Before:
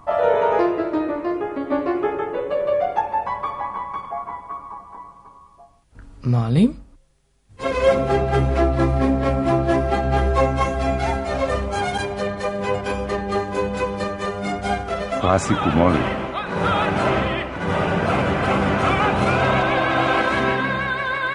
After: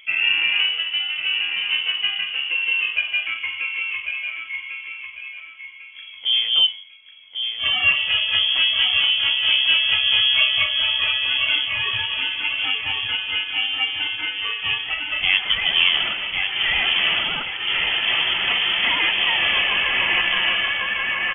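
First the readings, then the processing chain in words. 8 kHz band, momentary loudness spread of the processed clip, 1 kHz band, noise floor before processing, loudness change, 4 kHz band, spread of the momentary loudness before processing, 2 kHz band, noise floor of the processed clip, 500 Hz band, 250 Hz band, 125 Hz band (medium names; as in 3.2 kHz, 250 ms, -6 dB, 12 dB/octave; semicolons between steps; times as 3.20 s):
under -40 dB, 11 LU, -11.5 dB, -48 dBFS, +2.5 dB, +18.5 dB, 8 LU, +6.5 dB, -40 dBFS, -21.5 dB, under -20 dB, -23.0 dB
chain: on a send: feedback delay 1097 ms, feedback 30%, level -6.5 dB; on the sum: frequency inversion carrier 3.3 kHz; trim -2 dB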